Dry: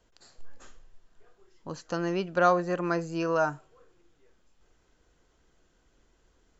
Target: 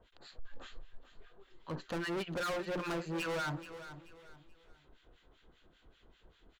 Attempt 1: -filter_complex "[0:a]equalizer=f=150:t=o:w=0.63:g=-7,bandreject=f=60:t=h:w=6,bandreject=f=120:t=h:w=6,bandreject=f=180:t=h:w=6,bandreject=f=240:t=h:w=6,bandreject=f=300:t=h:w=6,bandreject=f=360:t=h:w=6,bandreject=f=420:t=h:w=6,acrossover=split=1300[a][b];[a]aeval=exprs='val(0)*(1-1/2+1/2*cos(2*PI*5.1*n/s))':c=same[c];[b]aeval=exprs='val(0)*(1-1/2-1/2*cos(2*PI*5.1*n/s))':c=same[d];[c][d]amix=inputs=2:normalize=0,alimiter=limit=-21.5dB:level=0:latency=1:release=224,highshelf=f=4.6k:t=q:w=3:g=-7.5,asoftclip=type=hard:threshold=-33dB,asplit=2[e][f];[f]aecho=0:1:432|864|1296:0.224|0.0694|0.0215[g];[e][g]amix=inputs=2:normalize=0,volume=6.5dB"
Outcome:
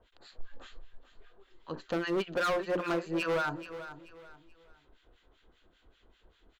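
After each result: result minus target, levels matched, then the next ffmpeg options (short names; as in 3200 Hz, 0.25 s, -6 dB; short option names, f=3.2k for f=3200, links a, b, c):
125 Hz band -6.0 dB; hard clip: distortion -5 dB
-filter_complex "[0:a]bandreject=f=60:t=h:w=6,bandreject=f=120:t=h:w=6,bandreject=f=180:t=h:w=6,bandreject=f=240:t=h:w=6,bandreject=f=300:t=h:w=6,bandreject=f=360:t=h:w=6,bandreject=f=420:t=h:w=6,acrossover=split=1300[a][b];[a]aeval=exprs='val(0)*(1-1/2+1/2*cos(2*PI*5.1*n/s))':c=same[c];[b]aeval=exprs='val(0)*(1-1/2-1/2*cos(2*PI*5.1*n/s))':c=same[d];[c][d]amix=inputs=2:normalize=0,alimiter=limit=-21.5dB:level=0:latency=1:release=224,highshelf=f=4.6k:t=q:w=3:g=-7.5,asoftclip=type=hard:threshold=-33dB,asplit=2[e][f];[f]aecho=0:1:432|864|1296:0.224|0.0694|0.0215[g];[e][g]amix=inputs=2:normalize=0,volume=6.5dB"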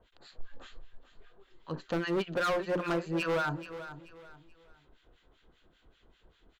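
hard clip: distortion -5 dB
-filter_complex "[0:a]bandreject=f=60:t=h:w=6,bandreject=f=120:t=h:w=6,bandreject=f=180:t=h:w=6,bandreject=f=240:t=h:w=6,bandreject=f=300:t=h:w=6,bandreject=f=360:t=h:w=6,bandreject=f=420:t=h:w=6,acrossover=split=1300[a][b];[a]aeval=exprs='val(0)*(1-1/2+1/2*cos(2*PI*5.1*n/s))':c=same[c];[b]aeval=exprs='val(0)*(1-1/2-1/2*cos(2*PI*5.1*n/s))':c=same[d];[c][d]amix=inputs=2:normalize=0,alimiter=limit=-21.5dB:level=0:latency=1:release=224,highshelf=f=4.6k:t=q:w=3:g=-7.5,asoftclip=type=hard:threshold=-41dB,asplit=2[e][f];[f]aecho=0:1:432|864|1296:0.224|0.0694|0.0215[g];[e][g]amix=inputs=2:normalize=0,volume=6.5dB"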